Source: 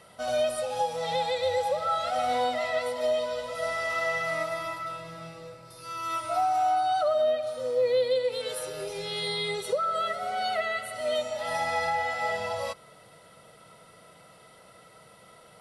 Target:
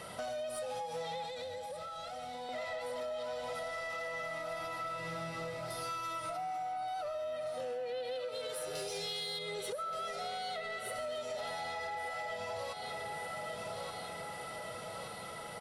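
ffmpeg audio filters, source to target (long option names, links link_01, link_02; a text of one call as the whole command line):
ffmpeg -i in.wav -filter_complex "[0:a]alimiter=level_in=5.5dB:limit=-24dB:level=0:latency=1:release=290,volume=-5.5dB,asettb=1/sr,asplit=3[link_01][link_02][link_03];[link_01]atrim=end=8.754[link_04];[link_02]atrim=start=8.75:end=9.39,asetpts=PTS-STARTPTS,afade=type=in:duration=0.004:curve=qsin,afade=type=out:start_time=0.636:duration=0.004:curve=qsin,equalizer=frequency=6000:width_type=o:width=2:gain=10.5[link_05];[link_03]atrim=start=9.386[link_06];[link_04][link_05]acrossfade=duration=0.004:curve1=hsin:curve2=qsin[link_07];[link_07][link_06]acrossfade=duration=0.004:curve1=qsin:curve2=hsin,aecho=1:1:1175|2350|3525|4700|5875|7050:0.282|0.149|0.0792|0.042|0.0222|0.0118,acompressor=threshold=-43dB:ratio=6,asoftclip=type=tanh:threshold=-39.5dB,asettb=1/sr,asplit=3[link_08][link_09][link_10];[link_08]atrim=end=1.244[link_11];[link_09]atrim=start=1.24:end=2.49,asetpts=PTS-STARTPTS,afade=type=in:duration=0.004:curve=qsin,afade=type=out:start_time=1.246:duration=0.004:curve=qsin,acrossover=split=360|3000[link_12][link_13][link_14];[link_13]acompressor=threshold=-50dB:ratio=6[link_15];[link_12][link_15][link_14]amix=inputs=3:normalize=0[link_16];[link_10]atrim=start=2.486[link_17];[link_11][link_16]acrossfade=duration=0.004:curve1=hsin:curve2=qsin[link_18];[link_18][link_17]acrossfade=duration=0.004:curve1=qsin:curve2=hsin,asettb=1/sr,asplit=3[link_19][link_20][link_21];[link_19]atrim=end=7.604[link_22];[link_20]atrim=start=7.6:end=8.25,asetpts=PTS-STARTPTS,afade=type=in:duration=0.004:curve=qsin,afade=type=out:start_time=0.646:duration=0.004:curve=qsin,equalizer=frequency=2800:width_type=o:width=0.34:gain=11[link_23];[link_21]atrim=start=8.246[link_24];[link_22][link_23]acrossfade=duration=0.004:curve1=hsin:curve2=qsin[link_25];[link_25][link_24]acrossfade=duration=0.004:curve1=qsin:curve2=hsin,volume=7.5dB" out.wav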